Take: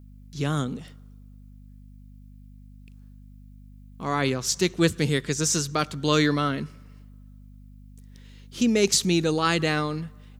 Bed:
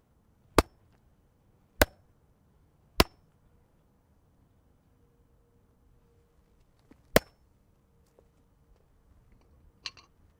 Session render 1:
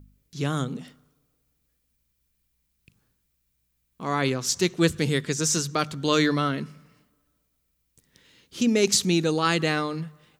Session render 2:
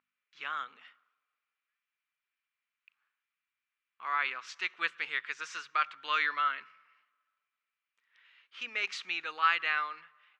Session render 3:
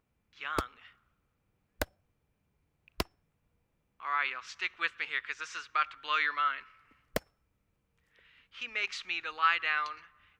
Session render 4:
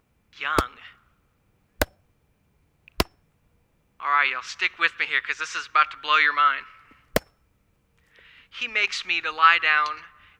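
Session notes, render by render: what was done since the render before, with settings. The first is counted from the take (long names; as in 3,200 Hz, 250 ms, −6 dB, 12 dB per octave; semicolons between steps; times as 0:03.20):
hum removal 50 Hz, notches 5
Chebyshev band-pass filter 1,200–2,600 Hz, order 2
mix in bed −11.5 dB
level +10.5 dB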